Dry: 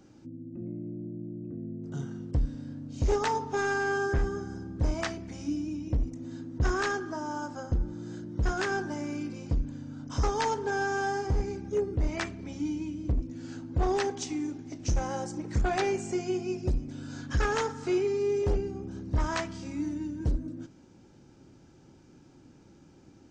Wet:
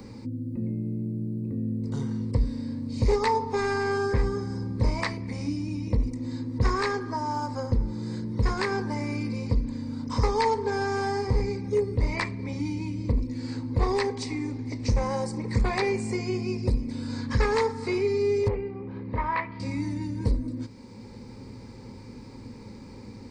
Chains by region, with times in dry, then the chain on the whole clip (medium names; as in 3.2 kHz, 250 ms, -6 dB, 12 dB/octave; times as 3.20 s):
18.48–19.60 s: low-pass 2.6 kHz 24 dB/octave + bass shelf 240 Hz -12 dB
whole clip: rippled EQ curve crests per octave 0.93, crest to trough 13 dB; three bands compressed up and down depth 40%; trim +3 dB